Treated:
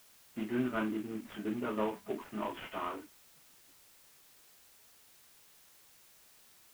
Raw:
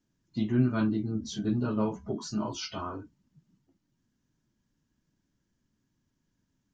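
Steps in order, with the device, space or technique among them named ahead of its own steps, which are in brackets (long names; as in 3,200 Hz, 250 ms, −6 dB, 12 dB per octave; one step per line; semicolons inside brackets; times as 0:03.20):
army field radio (band-pass filter 350–3,300 Hz; variable-slope delta modulation 16 kbit/s; white noise bed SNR 21 dB)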